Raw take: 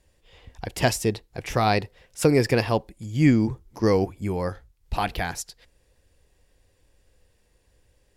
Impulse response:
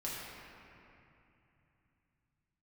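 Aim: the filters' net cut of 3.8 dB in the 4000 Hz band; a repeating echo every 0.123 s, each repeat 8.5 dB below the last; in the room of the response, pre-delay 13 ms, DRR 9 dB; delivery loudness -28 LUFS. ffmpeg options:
-filter_complex "[0:a]equalizer=f=4k:t=o:g=-5,aecho=1:1:123|246|369|492:0.376|0.143|0.0543|0.0206,asplit=2[a][b];[1:a]atrim=start_sample=2205,adelay=13[c];[b][c]afir=irnorm=-1:irlink=0,volume=-11.5dB[d];[a][d]amix=inputs=2:normalize=0,volume=-4.5dB"

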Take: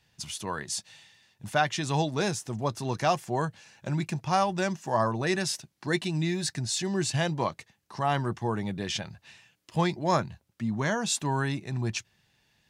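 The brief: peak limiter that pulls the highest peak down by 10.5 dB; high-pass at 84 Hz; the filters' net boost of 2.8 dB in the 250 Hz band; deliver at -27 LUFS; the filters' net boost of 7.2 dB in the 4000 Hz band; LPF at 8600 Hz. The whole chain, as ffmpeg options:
-af "highpass=84,lowpass=8.6k,equalizer=f=250:t=o:g=4.5,equalizer=f=4k:t=o:g=9,volume=2.5dB,alimiter=limit=-15.5dB:level=0:latency=1"

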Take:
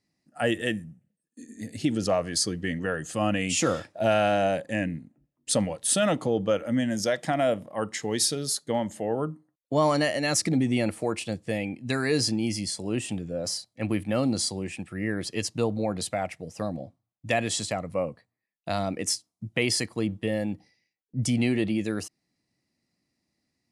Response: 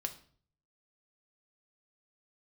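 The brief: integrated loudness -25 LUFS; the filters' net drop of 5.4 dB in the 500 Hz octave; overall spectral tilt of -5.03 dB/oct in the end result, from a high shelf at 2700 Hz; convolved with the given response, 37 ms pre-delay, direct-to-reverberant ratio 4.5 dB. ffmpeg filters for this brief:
-filter_complex "[0:a]equalizer=f=500:t=o:g=-6.5,highshelf=f=2.7k:g=-8,asplit=2[a][b];[1:a]atrim=start_sample=2205,adelay=37[c];[b][c]afir=irnorm=-1:irlink=0,volume=-4.5dB[d];[a][d]amix=inputs=2:normalize=0,volume=4.5dB"

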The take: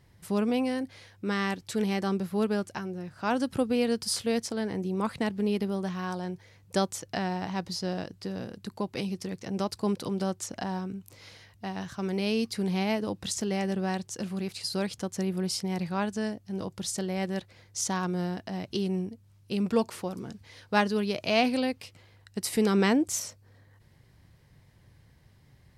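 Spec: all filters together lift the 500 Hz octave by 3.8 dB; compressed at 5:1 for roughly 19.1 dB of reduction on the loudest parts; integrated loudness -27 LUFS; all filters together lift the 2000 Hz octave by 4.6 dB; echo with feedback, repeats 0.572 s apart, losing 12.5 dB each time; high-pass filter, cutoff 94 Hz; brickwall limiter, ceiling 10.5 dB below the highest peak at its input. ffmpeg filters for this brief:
-af "highpass=94,equalizer=f=500:t=o:g=4.5,equalizer=f=2k:t=o:g=5.5,acompressor=threshold=-38dB:ratio=5,alimiter=level_in=8.5dB:limit=-24dB:level=0:latency=1,volume=-8.5dB,aecho=1:1:572|1144|1716:0.237|0.0569|0.0137,volume=16.5dB"

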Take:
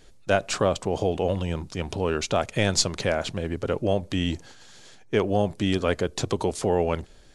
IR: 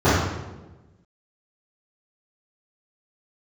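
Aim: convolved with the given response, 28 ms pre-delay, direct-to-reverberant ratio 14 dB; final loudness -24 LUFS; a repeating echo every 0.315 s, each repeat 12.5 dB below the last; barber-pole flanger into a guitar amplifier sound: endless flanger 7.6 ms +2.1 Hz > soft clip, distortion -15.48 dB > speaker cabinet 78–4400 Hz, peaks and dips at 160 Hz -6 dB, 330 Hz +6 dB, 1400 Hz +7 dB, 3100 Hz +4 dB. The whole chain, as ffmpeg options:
-filter_complex "[0:a]aecho=1:1:315|630|945:0.237|0.0569|0.0137,asplit=2[a][b];[1:a]atrim=start_sample=2205,adelay=28[c];[b][c]afir=irnorm=-1:irlink=0,volume=-38dB[d];[a][d]amix=inputs=2:normalize=0,asplit=2[e][f];[f]adelay=7.6,afreqshift=2.1[g];[e][g]amix=inputs=2:normalize=1,asoftclip=threshold=-18.5dB,highpass=78,equalizer=f=160:t=q:w=4:g=-6,equalizer=f=330:t=q:w=4:g=6,equalizer=f=1.4k:t=q:w=4:g=7,equalizer=f=3.1k:t=q:w=4:g=4,lowpass=f=4.4k:w=0.5412,lowpass=f=4.4k:w=1.3066,volume=5dB"

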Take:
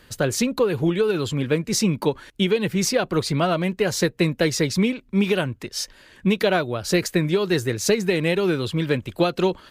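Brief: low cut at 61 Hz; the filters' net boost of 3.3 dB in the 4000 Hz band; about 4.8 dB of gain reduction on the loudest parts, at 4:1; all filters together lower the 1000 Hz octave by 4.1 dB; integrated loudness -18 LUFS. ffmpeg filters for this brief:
-af "highpass=61,equalizer=f=1k:t=o:g=-6.5,equalizer=f=4k:t=o:g=4.5,acompressor=threshold=-21dB:ratio=4,volume=8dB"

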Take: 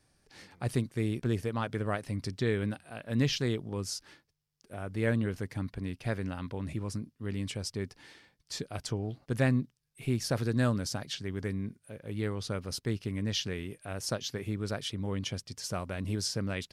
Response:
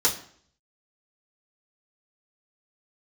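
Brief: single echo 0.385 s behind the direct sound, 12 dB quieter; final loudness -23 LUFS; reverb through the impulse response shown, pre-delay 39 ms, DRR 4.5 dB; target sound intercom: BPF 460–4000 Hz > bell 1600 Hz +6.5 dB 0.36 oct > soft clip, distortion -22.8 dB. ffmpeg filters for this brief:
-filter_complex "[0:a]aecho=1:1:385:0.251,asplit=2[a][b];[1:a]atrim=start_sample=2205,adelay=39[c];[b][c]afir=irnorm=-1:irlink=0,volume=-16.5dB[d];[a][d]amix=inputs=2:normalize=0,highpass=460,lowpass=4k,equalizer=f=1.6k:t=o:w=0.36:g=6.5,asoftclip=threshold=-19.5dB,volume=15dB"

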